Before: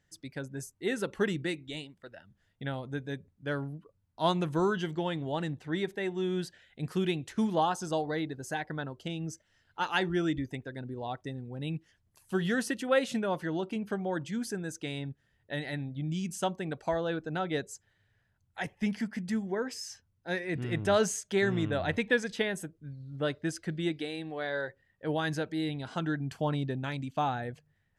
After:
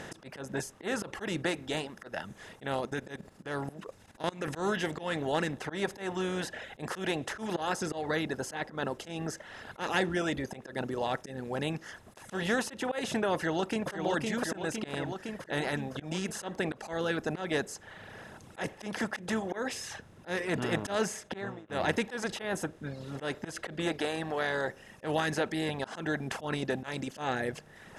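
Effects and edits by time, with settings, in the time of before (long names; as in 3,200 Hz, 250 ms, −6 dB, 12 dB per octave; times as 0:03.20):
0:02.85–0:04.48: output level in coarse steps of 13 dB
0:13.35–0:13.92: delay throw 510 ms, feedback 50%, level −4 dB
0:20.95–0:21.69: fade out and dull
whole clip: compressor on every frequency bin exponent 0.4; reverb reduction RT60 1.1 s; volume swells 137 ms; level −4 dB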